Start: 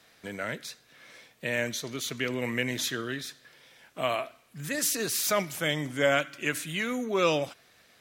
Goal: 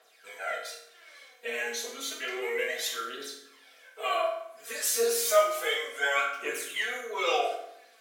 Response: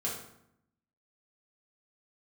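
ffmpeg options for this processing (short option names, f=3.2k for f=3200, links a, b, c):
-filter_complex "[0:a]aphaser=in_gain=1:out_gain=1:delay=4.8:decay=0.77:speed=0.31:type=triangular,highpass=f=440:w=0.5412,highpass=f=440:w=1.3066[a];[1:a]atrim=start_sample=2205[b];[a][b]afir=irnorm=-1:irlink=0,volume=-7dB"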